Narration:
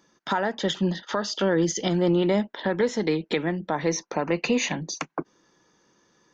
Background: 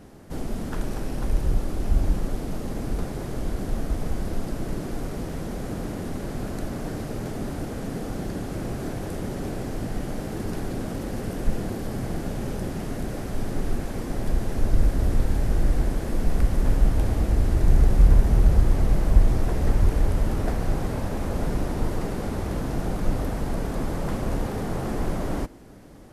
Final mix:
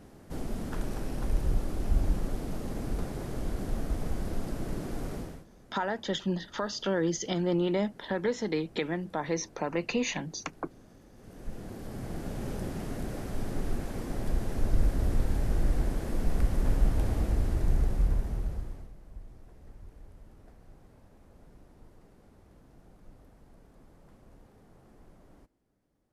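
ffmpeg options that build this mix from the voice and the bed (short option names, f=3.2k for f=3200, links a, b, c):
-filter_complex "[0:a]adelay=5450,volume=-6dB[a];[1:a]volume=14.5dB,afade=t=out:st=5.14:d=0.31:silence=0.1,afade=t=in:st=11.15:d=1.37:silence=0.105925,afade=t=out:st=17.18:d=1.74:silence=0.0630957[b];[a][b]amix=inputs=2:normalize=0"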